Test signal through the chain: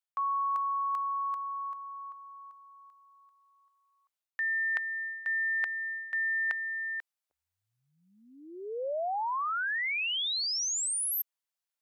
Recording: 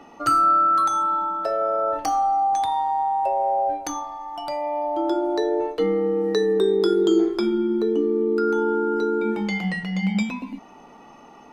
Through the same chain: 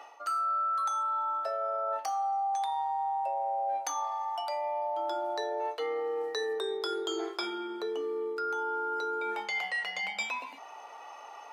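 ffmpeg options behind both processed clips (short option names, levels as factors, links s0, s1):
-af "highpass=f=580:w=0.5412,highpass=f=580:w=1.3066,areverse,acompressor=threshold=0.0251:ratio=6,areverse,volume=1.26"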